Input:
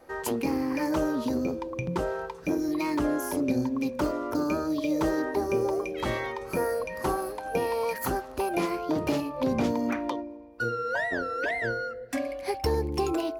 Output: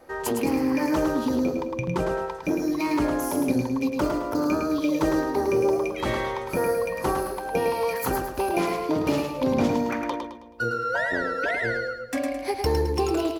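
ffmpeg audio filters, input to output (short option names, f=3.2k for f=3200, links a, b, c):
-af "aecho=1:1:107|214|321|428|535:0.531|0.207|0.0807|0.0315|0.0123,volume=2.5dB"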